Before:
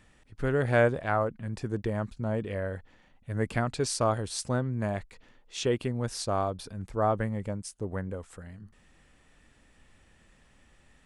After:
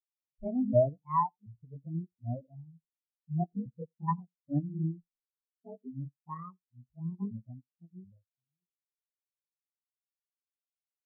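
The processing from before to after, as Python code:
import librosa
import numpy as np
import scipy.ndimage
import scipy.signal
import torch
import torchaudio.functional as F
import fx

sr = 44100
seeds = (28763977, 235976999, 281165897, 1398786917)

p1 = fx.pitch_ramps(x, sr, semitones=12.0, every_ms=731)
p2 = fx.filter_lfo_lowpass(p1, sr, shape='square', hz=0.98, low_hz=490.0, high_hz=2300.0, q=0.74)
p3 = p2 + fx.echo_single(p2, sr, ms=87, db=-12.5, dry=0)
p4 = fx.spectral_expand(p3, sr, expansion=4.0)
y = p4 * librosa.db_to_amplitude(2.0)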